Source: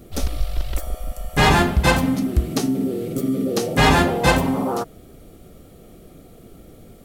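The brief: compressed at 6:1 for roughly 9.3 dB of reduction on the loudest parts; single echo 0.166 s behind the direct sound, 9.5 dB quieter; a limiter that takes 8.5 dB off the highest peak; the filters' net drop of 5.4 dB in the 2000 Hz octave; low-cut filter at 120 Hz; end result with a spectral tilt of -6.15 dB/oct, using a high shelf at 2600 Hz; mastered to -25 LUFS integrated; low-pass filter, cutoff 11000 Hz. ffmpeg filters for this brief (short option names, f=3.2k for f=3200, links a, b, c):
-af "highpass=120,lowpass=11k,equalizer=f=2k:t=o:g=-3.5,highshelf=f=2.6k:g=-8,acompressor=threshold=-23dB:ratio=6,alimiter=limit=-20.5dB:level=0:latency=1,aecho=1:1:166:0.335,volume=4.5dB"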